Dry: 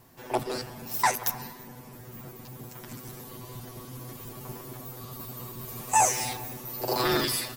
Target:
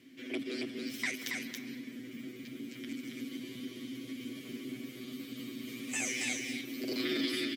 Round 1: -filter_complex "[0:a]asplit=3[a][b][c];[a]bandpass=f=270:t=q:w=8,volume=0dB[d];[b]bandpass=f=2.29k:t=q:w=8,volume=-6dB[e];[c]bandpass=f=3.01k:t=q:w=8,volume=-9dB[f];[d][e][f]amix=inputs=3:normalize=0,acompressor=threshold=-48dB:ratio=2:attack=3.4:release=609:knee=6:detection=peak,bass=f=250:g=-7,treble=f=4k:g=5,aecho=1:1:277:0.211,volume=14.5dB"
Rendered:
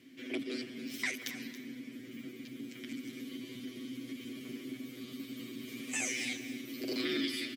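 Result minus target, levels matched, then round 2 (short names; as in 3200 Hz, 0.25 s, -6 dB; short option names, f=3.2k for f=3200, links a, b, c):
echo-to-direct -10 dB
-filter_complex "[0:a]asplit=3[a][b][c];[a]bandpass=f=270:t=q:w=8,volume=0dB[d];[b]bandpass=f=2.29k:t=q:w=8,volume=-6dB[e];[c]bandpass=f=3.01k:t=q:w=8,volume=-9dB[f];[d][e][f]amix=inputs=3:normalize=0,acompressor=threshold=-48dB:ratio=2:attack=3.4:release=609:knee=6:detection=peak,bass=f=250:g=-7,treble=f=4k:g=5,aecho=1:1:277:0.668,volume=14.5dB"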